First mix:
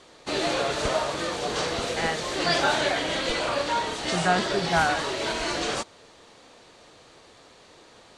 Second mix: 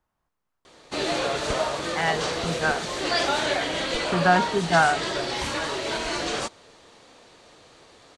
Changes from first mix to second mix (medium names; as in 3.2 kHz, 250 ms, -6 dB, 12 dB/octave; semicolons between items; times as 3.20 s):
speech +4.0 dB; background: entry +0.65 s